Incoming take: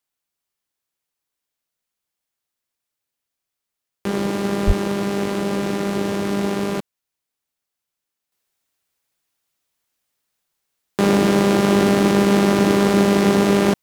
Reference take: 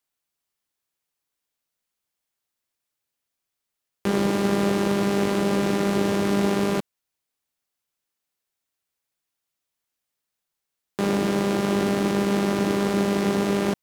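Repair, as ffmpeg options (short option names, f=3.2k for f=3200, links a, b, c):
-filter_complex "[0:a]asplit=3[a][b][c];[a]afade=t=out:st=4.66:d=0.02[d];[b]highpass=f=140:w=0.5412,highpass=f=140:w=1.3066,afade=t=in:st=4.66:d=0.02,afade=t=out:st=4.78:d=0.02[e];[c]afade=t=in:st=4.78:d=0.02[f];[d][e][f]amix=inputs=3:normalize=0,asetnsamples=n=441:p=0,asendcmd='8.32 volume volume -7dB',volume=0dB"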